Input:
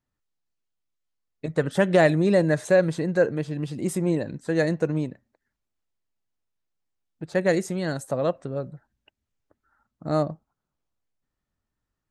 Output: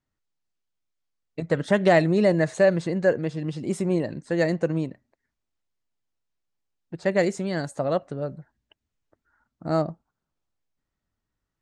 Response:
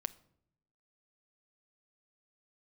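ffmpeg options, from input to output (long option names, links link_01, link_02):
-af "lowpass=frequency=7800:width=0.5412,lowpass=frequency=7800:width=1.3066,asetrate=45938,aresample=44100"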